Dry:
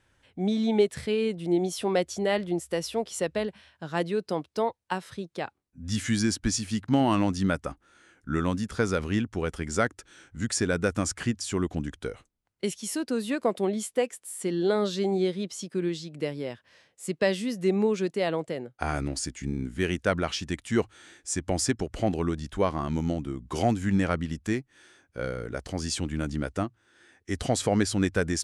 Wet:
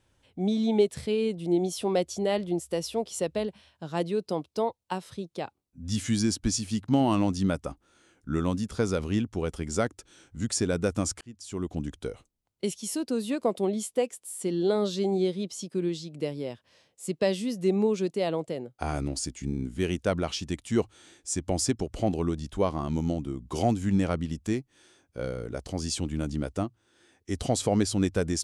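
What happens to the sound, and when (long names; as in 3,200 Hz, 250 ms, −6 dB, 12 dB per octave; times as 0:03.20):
0:11.21–0:11.88: fade in linear
whole clip: parametric band 1,700 Hz −8.5 dB 0.95 octaves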